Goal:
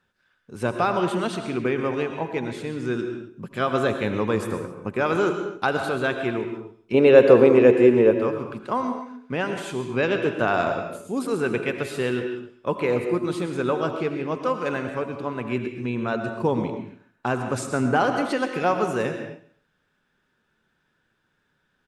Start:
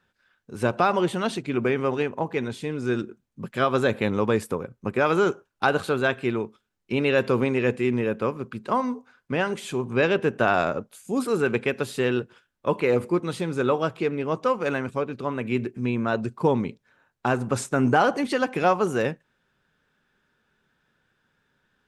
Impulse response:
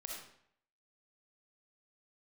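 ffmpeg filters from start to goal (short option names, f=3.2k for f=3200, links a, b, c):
-filter_complex "[0:a]asettb=1/sr,asplit=3[a][b][c];[a]atrim=end=6.944[d];[b]atrim=start=6.94:end=8.11,asetpts=PTS-STARTPTS,afade=t=in:d=0.004:c=qsin,afade=t=out:st=1.166:d=0.004:c=qsin,equalizer=f=490:t=o:w=1.8:g=12.5[e];[c]atrim=start=8.106[f];[d][e]acrossfade=d=0.004:c1=hsin:c2=qsin[g];[g][f]acrossfade=d=0.004:c1=qsin:c2=hsin,aecho=1:1:136|272:0.119|0.0321,asplit=2[h][i];[1:a]atrim=start_sample=2205,atrim=end_sample=6615,asetrate=22932,aresample=44100[j];[i][j]afir=irnorm=-1:irlink=0,volume=-2.5dB[k];[h][k]amix=inputs=2:normalize=0,volume=-5.5dB"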